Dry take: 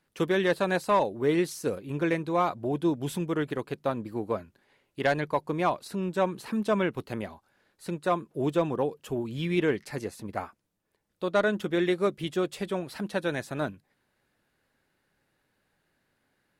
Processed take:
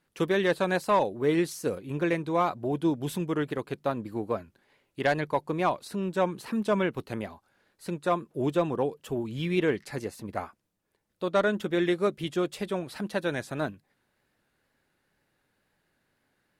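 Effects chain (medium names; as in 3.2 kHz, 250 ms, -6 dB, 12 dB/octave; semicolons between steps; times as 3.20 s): wow and flutter 44 cents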